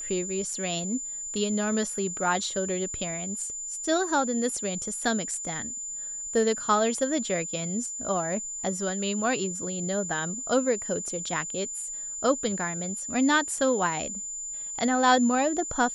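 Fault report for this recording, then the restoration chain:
whine 7.1 kHz -33 dBFS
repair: band-stop 7.1 kHz, Q 30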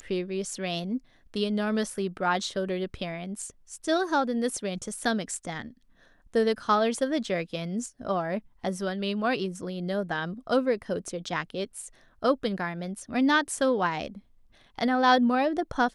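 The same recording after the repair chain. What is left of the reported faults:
nothing left

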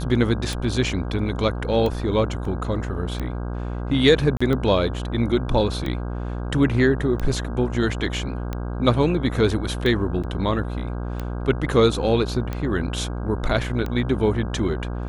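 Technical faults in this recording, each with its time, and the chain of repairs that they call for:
buzz 60 Hz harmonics 27 -28 dBFS
tick 45 rpm
2.45 s: dropout 3 ms
4.37–4.41 s: dropout 35 ms
10.23–10.24 s: dropout 6.6 ms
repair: de-click; de-hum 60 Hz, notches 27; interpolate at 2.45 s, 3 ms; interpolate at 4.37 s, 35 ms; interpolate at 10.23 s, 6.6 ms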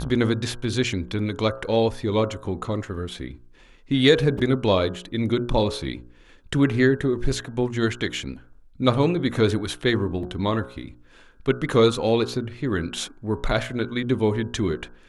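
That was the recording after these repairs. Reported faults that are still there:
nothing left

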